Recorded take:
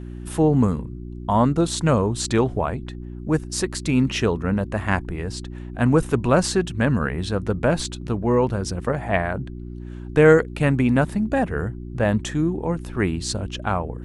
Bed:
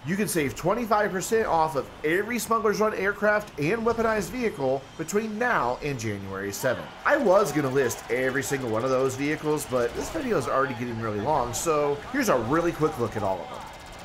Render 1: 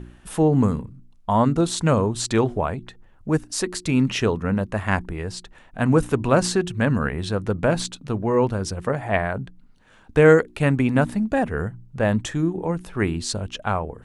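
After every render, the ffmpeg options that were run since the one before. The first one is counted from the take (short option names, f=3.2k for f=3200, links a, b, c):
-af "bandreject=f=60:t=h:w=4,bandreject=f=120:t=h:w=4,bandreject=f=180:t=h:w=4,bandreject=f=240:t=h:w=4,bandreject=f=300:t=h:w=4,bandreject=f=360:t=h:w=4"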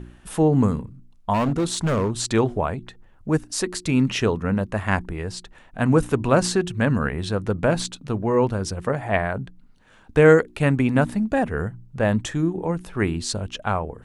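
-filter_complex "[0:a]asplit=3[a][b][c];[a]afade=t=out:st=1.33:d=0.02[d];[b]asoftclip=type=hard:threshold=-17.5dB,afade=t=in:st=1.33:d=0.02,afade=t=out:st=2.1:d=0.02[e];[c]afade=t=in:st=2.1:d=0.02[f];[d][e][f]amix=inputs=3:normalize=0"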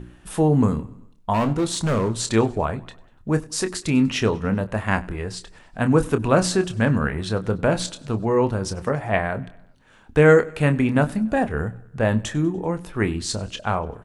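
-filter_complex "[0:a]asplit=2[a][b];[b]adelay=27,volume=-10dB[c];[a][c]amix=inputs=2:normalize=0,aecho=1:1:97|194|291|388:0.0668|0.0394|0.0233|0.0137"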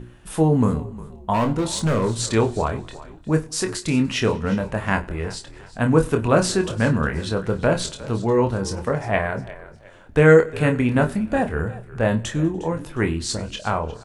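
-filter_complex "[0:a]asplit=2[a][b];[b]adelay=25,volume=-8dB[c];[a][c]amix=inputs=2:normalize=0,asplit=4[d][e][f][g];[e]adelay=357,afreqshift=-41,volume=-17.5dB[h];[f]adelay=714,afreqshift=-82,volume=-26.4dB[i];[g]adelay=1071,afreqshift=-123,volume=-35.2dB[j];[d][h][i][j]amix=inputs=4:normalize=0"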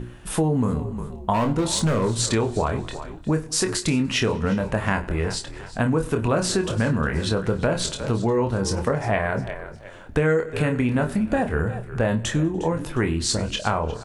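-filter_complex "[0:a]asplit=2[a][b];[b]alimiter=limit=-11.5dB:level=0:latency=1:release=34,volume=-2.5dB[c];[a][c]amix=inputs=2:normalize=0,acompressor=threshold=-19dB:ratio=4"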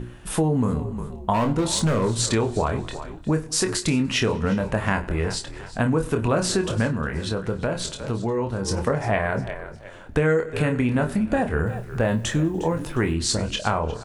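-filter_complex "[0:a]asettb=1/sr,asplit=3[a][b][c];[a]atrim=end=11.664[d];[b]atrim=start=11.66:end=13.14,asetpts=PTS-STARTPTS,afade=t=in:d=0.004:c=qsin,afade=t=out:st=1.476:d=0.004:c=qsin,acrusher=bits=8:mix=0:aa=0.5[e];[c]atrim=start=13.136[f];[d][e]acrossfade=d=0.004:c1=hsin:c2=qsin[g];[g][f]acrossfade=d=0.004:c1=qsin:c2=hsin,asplit=3[h][i][j];[h]atrim=end=6.872[k];[i]atrim=start=6.868:end=8.682,asetpts=PTS-STARTPTS,volume=-3.5dB[l];[j]atrim=start=8.678[m];[k][l]acrossfade=d=0.004:c1=hsin:c2=hsin[n];[n][m]acrossfade=d=0.004:c1=hsin:c2=hsin"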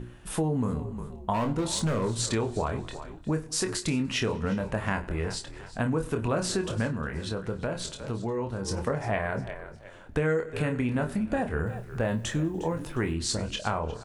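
-af "volume=-6dB"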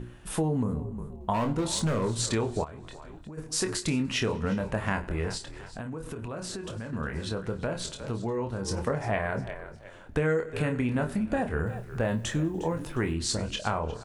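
-filter_complex "[0:a]asettb=1/sr,asplit=3[a][b][c];[a]atrim=end=0.634[d];[b]atrim=start=0.63:end=1.21,asetpts=PTS-STARTPTS,afade=t=in:d=0.004:c=qsin,afade=t=out:st=0.576:d=0.004:c=qsin,equalizer=f=3.6k:w=0.37:g=-11.5[e];[c]atrim=start=1.206[f];[d][e]acrossfade=d=0.004:c1=hsin:c2=qsin[g];[g][f]acrossfade=d=0.004:c1=qsin:c2=hsin,asplit=3[h][i][j];[h]afade=t=out:st=2.63:d=0.02[k];[i]acompressor=threshold=-39dB:ratio=8:attack=3.2:release=140:knee=1:detection=peak,afade=t=in:st=2.63:d=0.02,afade=t=out:st=3.37:d=0.02[l];[j]afade=t=in:st=3.37:d=0.02[m];[k][l][m]amix=inputs=3:normalize=0,asettb=1/sr,asplit=3[n][o][p];[n]atrim=end=5.374[q];[o]atrim=start=5.37:end=6.93,asetpts=PTS-STARTPTS,afade=t=in:d=0.004:c=qsin,afade=t=out:st=1.556:d=0.004:c=qsin,acompressor=threshold=-34dB:ratio=4:attack=3.2:release=140:knee=1:detection=peak[r];[p]atrim=start=6.926[s];[q][r]acrossfade=d=0.004:c1=hsin:c2=qsin[t];[t][s]acrossfade=d=0.004:c1=qsin:c2=hsin"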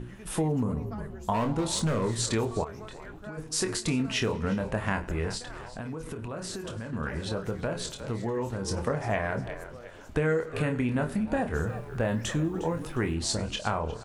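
-filter_complex "[1:a]volume=-22.5dB[a];[0:a][a]amix=inputs=2:normalize=0"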